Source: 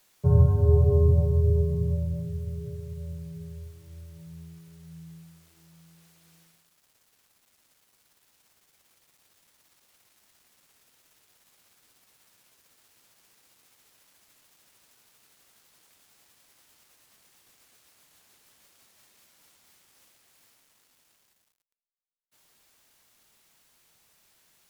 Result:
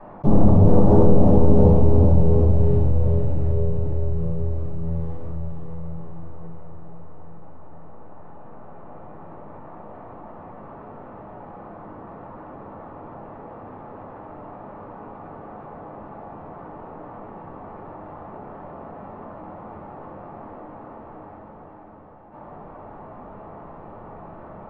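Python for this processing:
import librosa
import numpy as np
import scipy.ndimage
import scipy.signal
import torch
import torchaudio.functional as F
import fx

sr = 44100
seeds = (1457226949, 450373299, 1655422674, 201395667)

y = np.minimum(x, 2.0 * 10.0 ** (-22.5 / 20.0) - x)
y = scipy.signal.sosfilt(scipy.signal.butter(4, 1000.0, 'lowpass', fs=sr, output='sos'), y)
y = fx.low_shelf(y, sr, hz=150.0, db=-10.5)
y = fx.leveller(y, sr, passes=1)
y = fx.echo_diffused(y, sr, ms=487, feedback_pct=47, wet_db=-6)
y = fx.room_shoebox(y, sr, seeds[0], volume_m3=560.0, walls='furnished', distance_m=8.6)
y = fx.env_flatten(y, sr, amount_pct=50)
y = y * librosa.db_to_amplitude(-7.0)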